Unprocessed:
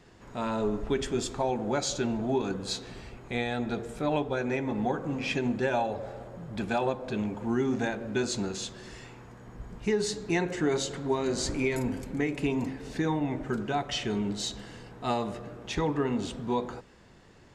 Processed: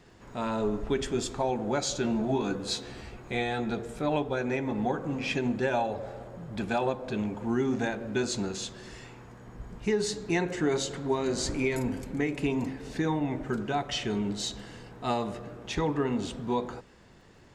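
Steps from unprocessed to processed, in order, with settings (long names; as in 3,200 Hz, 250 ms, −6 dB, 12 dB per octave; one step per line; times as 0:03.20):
surface crackle 46 per second −59 dBFS
0:02.03–0:03.71: double-tracking delay 14 ms −4 dB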